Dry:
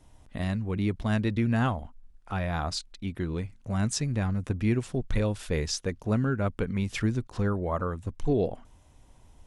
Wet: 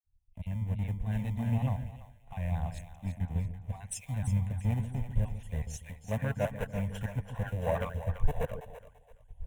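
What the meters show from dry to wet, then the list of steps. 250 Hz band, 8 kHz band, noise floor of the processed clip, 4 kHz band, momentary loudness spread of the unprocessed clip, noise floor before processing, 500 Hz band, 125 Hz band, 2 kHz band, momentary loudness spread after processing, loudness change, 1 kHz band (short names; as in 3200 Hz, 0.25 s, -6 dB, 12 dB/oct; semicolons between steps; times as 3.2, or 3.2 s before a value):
-9.5 dB, -7.5 dB, -60 dBFS, -15.0 dB, 7 LU, -57 dBFS, -6.5 dB, -2.5 dB, -8.0 dB, 10 LU, -5.0 dB, -6.5 dB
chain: random spectral dropouts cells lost 34%; recorder AGC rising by 14 dB/s; spectral gain 6.11–8.55, 420–1900 Hz +11 dB; low shelf 240 Hz +8.5 dB; in parallel at -10 dB: sample-and-hold 40×; on the sum: tube stage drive 15 dB, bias 0.3; fixed phaser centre 1300 Hz, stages 6; on a send: split-band echo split 480 Hz, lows 0.145 s, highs 0.336 s, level -6 dB; on the sum: three-band expander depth 100%; gain -8 dB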